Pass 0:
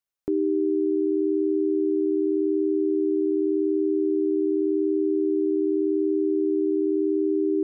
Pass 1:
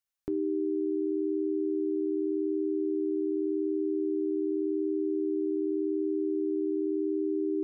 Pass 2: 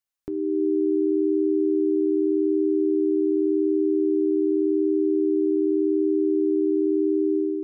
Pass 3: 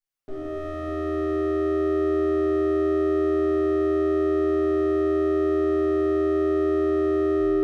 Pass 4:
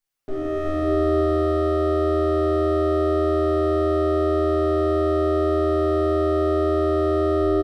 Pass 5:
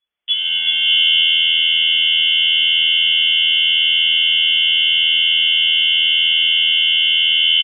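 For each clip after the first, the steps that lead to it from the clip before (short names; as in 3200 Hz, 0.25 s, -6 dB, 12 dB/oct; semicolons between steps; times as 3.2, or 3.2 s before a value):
bell 420 Hz -7 dB 2.2 oct; de-hum 119.6 Hz, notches 26
AGC gain up to 8 dB
minimum comb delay 7.5 ms; reverb RT60 3.0 s, pre-delay 5 ms, DRR -10.5 dB; gain -7 dB
echo 0.371 s -4 dB; gain +6 dB
high shelf 2500 Hz -11 dB; echo 0.228 s -13 dB; inverted band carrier 3400 Hz; gain +6 dB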